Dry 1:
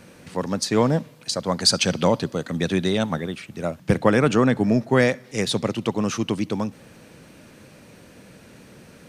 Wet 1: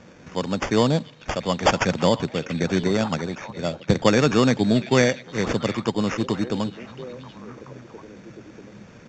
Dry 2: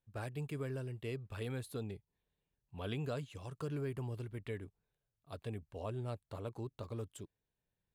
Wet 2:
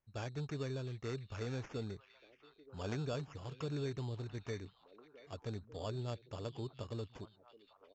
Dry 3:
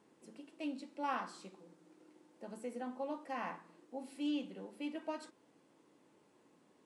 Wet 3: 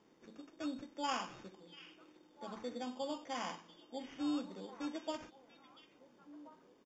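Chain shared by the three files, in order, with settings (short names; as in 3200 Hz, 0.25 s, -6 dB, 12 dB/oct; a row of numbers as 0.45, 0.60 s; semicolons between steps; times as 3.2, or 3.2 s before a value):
sample-and-hold 11×; downsampling 16000 Hz; delay with a stepping band-pass 0.689 s, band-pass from 2800 Hz, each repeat -1.4 oct, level -10 dB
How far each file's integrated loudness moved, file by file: 0.0, 0.0, 0.0 LU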